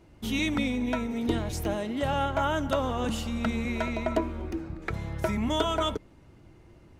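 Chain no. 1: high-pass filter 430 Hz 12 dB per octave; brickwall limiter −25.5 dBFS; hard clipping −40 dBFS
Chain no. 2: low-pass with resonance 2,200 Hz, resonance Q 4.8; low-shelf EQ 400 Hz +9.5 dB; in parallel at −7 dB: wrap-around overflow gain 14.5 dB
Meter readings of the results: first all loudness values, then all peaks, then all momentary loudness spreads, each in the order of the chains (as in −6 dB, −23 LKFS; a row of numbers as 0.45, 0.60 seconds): −42.0, −20.5 LKFS; −40.0, −7.5 dBFS; 4, 6 LU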